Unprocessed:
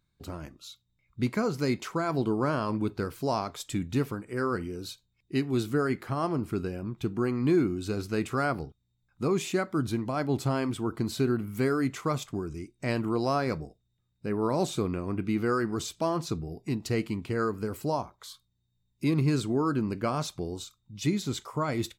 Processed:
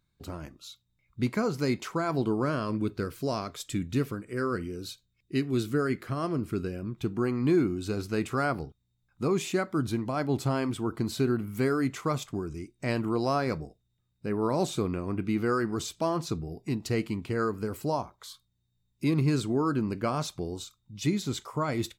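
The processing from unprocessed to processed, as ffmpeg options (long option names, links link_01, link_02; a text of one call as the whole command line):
ffmpeg -i in.wav -filter_complex "[0:a]asettb=1/sr,asplit=3[link_01][link_02][link_03];[link_01]atrim=end=2.424[link_04];[link_02]atrim=start=2.42:end=6.98,asetpts=PTS-STARTPTS,afade=type=in:duration=0.004:curve=qsin,afade=type=out:start_time=4.556:duration=0.004:curve=qsin,equalizer=frequency=850:width_type=o:width=0.42:gain=-10.5[link_05];[link_03]atrim=start=6.976[link_06];[link_04][link_05]acrossfade=duration=0.004:curve1=hsin:curve2=qsin[link_07];[link_07][link_06]acrossfade=duration=0.004:curve1=qsin:curve2=hsin" out.wav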